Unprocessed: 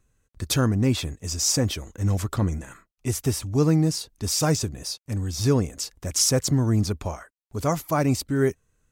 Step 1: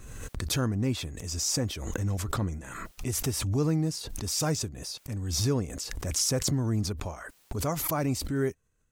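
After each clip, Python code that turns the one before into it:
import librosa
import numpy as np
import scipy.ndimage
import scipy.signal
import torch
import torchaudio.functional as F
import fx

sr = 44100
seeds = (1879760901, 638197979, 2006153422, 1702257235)

y = fx.pre_swell(x, sr, db_per_s=34.0)
y = y * librosa.db_to_amplitude(-7.0)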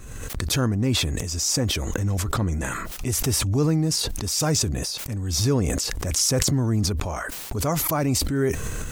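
y = fx.sustainer(x, sr, db_per_s=25.0)
y = y * librosa.db_to_amplitude(5.0)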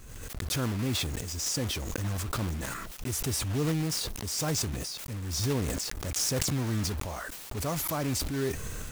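y = fx.block_float(x, sr, bits=3)
y = y * librosa.db_to_amplitude(-8.0)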